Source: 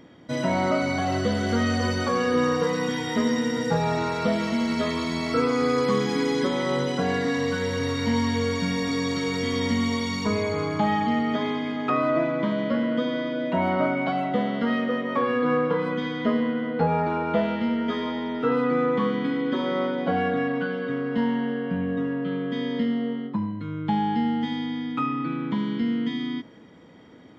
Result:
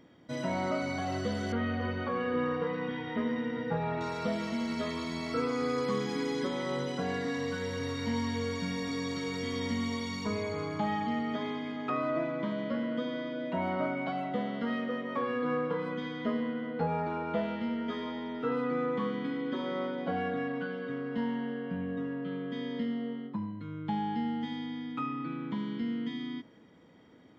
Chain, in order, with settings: 1.52–4.01 s: low-pass 3.1 kHz 24 dB/octave; trim -8.5 dB

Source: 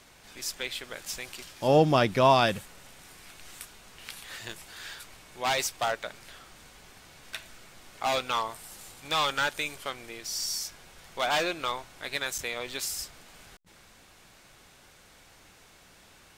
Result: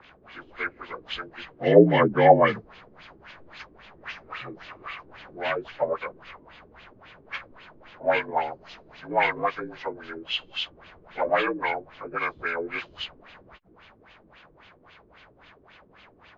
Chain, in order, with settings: frequency axis rescaled in octaves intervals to 82%; LFO low-pass sine 3.7 Hz 330–3100 Hz; 4.03–5.65 s: three bands compressed up and down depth 40%; trim +3 dB

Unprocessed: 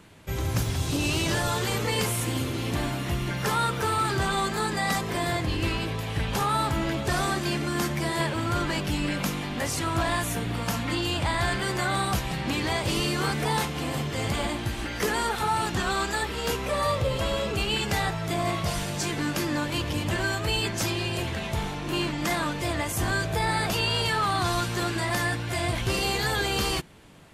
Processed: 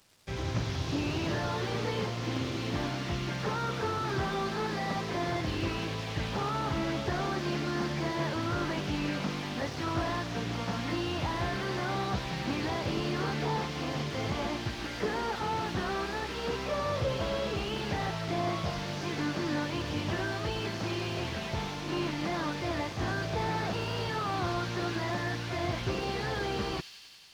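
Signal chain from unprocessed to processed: one-bit delta coder 32 kbps, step -42 dBFS; high-pass 95 Hz 6 dB/octave; tone controls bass 0 dB, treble +4 dB; crossover distortion -46.5 dBFS; feedback echo behind a high-pass 93 ms, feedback 82%, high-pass 3.8 kHz, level -6 dB; loudspeaker Doppler distortion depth 0.17 ms; trim -2 dB

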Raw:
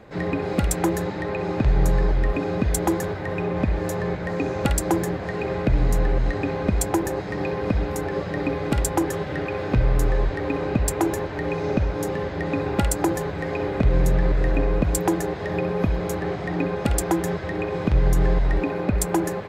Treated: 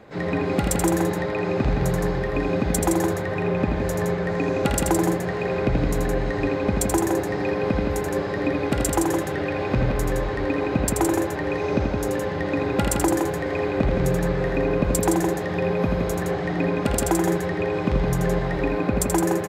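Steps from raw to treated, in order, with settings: bass shelf 68 Hz -9 dB; on a send: loudspeakers at several distances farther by 28 m -5 dB, 57 m -5 dB

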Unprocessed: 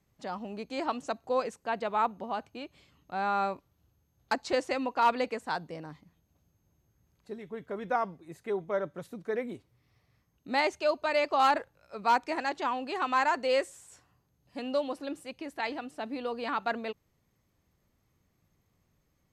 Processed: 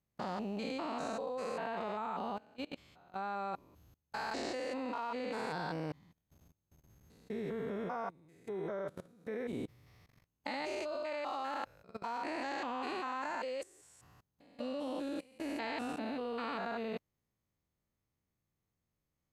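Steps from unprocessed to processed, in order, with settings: spectrogram pixelated in time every 200 ms; level held to a coarse grid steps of 24 dB; trim +9.5 dB

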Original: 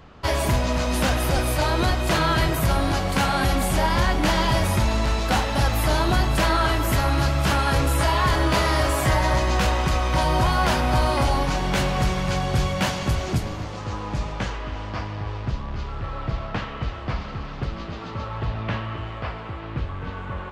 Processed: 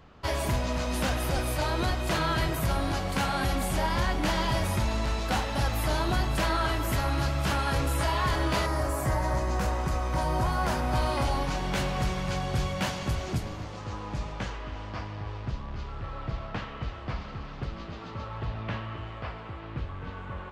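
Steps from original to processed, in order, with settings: 8.65–10.93 s: peaking EQ 3.2 kHz -13.5 dB -> -5.5 dB 1.3 oct; trim -6.5 dB

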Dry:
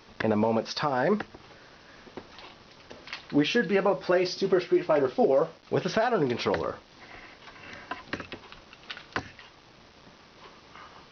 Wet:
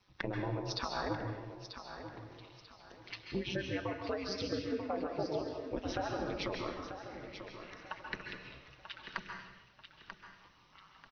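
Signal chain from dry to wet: expander on every frequency bin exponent 1.5; compression, threshold -35 dBFS, peak gain reduction 15 dB; feedback delay 939 ms, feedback 32%, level -10 dB; ring modulator 97 Hz; plate-style reverb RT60 0.87 s, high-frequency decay 0.95×, pre-delay 120 ms, DRR 3 dB; trim +2.5 dB

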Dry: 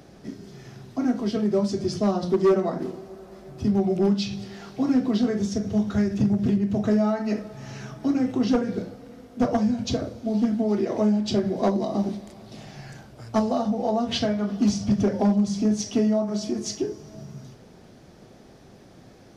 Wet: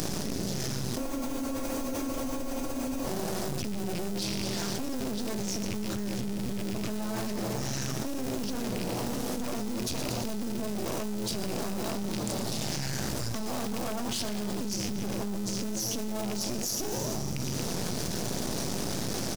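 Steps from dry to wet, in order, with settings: rattle on loud lows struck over -32 dBFS, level -24 dBFS; in parallel at -9.5 dB: sample-and-hold 40×; on the sum: half-wave rectifier; bass shelf 160 Hz -8 dB; frequency-shifting echo 115 ms, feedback 48%, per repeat +120 Hz, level -13 dB; on a send at -15 dB: reverberation RT60 0.95 s, pre-delay 3 ms; on the sum: peak limiter -28 dBFS, peak gain reduction 16.5 dB; tone controls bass +7 dB, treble +14 dB; spectral freeze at 0.99 s, 2.06 s; level flattener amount 100%; trim -3 dB

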